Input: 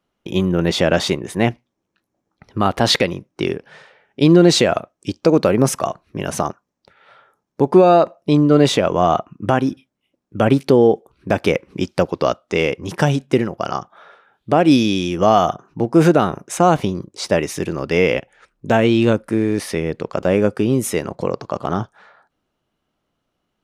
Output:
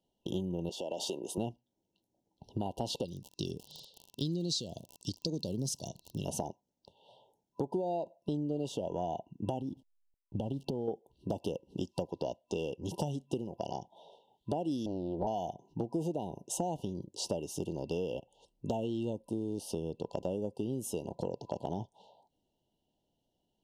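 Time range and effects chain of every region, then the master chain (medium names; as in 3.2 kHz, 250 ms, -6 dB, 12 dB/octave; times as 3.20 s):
0.69–1.38 s: high-pass 350 Hz + compression 10:1, threshold -19 dBFS
3.04–6.25 s: FFT filter 150 Hz 0 dB, 520 Hz -11 dB, 810 Hz -18 dB, 2.1 kHz -20 dB, 4.1 kHz +13 dB, 11 kHz -2 dB + crackle 56 per s -26 dBFS
9.59–10.88 s: tone controls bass +6 dB, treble -5 dB + compression 5:1, threshold -17 dBFS + hysteresis with a dead band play -45.5 dBFS
14.86–15.27 s: low-pass 1.1 kHz + short-mantissa float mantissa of 8-bit + loudspeaker Doppler distortion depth 0.66 ms
whole clip: FFT band-reject 1–2.7 kHz; dynamic bell 3.8 kHz, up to -6 dB, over -42 dBFS, Q 2; compression 6:1, threshold -26 dBFS; trim -6.5 dB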